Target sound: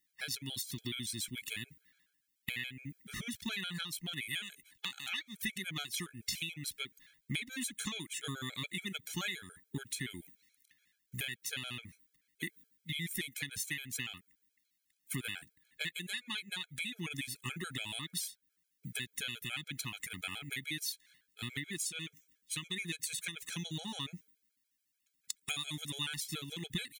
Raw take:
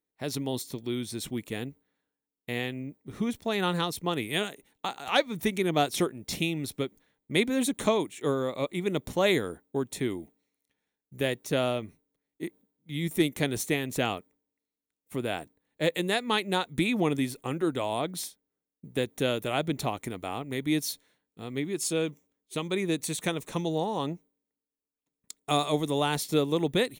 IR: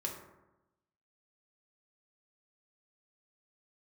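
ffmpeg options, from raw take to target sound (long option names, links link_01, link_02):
-af "firequalizer=gain_entry='entry(180,0);entry(530,-21);entry(1700,10)':delay=0.05:min_phase=1,acompressor=threshold=-38dB:ratio=6,afftfilt=real='re*gt(sin(2*PI*7*pts/sr)*(1-2*mod(floor(b*sr/1024/430),2)),0)':imag='im*gt(sin(2*PI*7*pts/sr)*(1-2*mod(floor(b*sr/1024/430),2)),0)':win_size=1024:overlap=0.75,volume=4.5dB"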